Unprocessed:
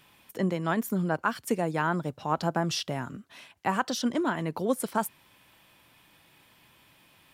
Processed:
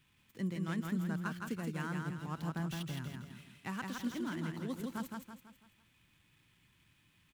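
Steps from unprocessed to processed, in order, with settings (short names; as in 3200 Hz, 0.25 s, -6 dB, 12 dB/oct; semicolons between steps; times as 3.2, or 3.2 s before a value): median filter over 9 samples; passive tone stack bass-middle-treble 6-0-2; on a send: feedback echo 0.165 s, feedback 43%, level -3.5 dB; on the sum: gain +9 dB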